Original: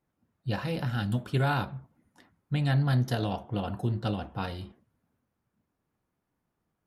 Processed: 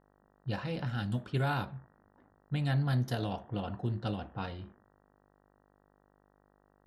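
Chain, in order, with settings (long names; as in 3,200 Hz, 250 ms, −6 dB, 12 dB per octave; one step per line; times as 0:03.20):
hum with harmonics 50 Hz, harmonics 38, −62 dBFS −1 dB per octave
low-pass that shuts in the quiet parts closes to 950 Hz, open at −24 dBFS
level −4.5 dB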